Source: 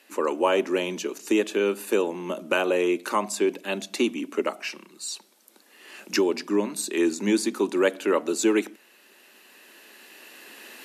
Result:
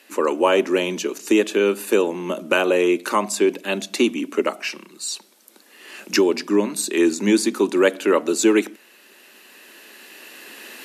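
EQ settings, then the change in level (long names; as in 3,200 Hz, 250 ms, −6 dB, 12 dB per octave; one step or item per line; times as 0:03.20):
parametric band 810 Hz −2 dB
+5.5 dB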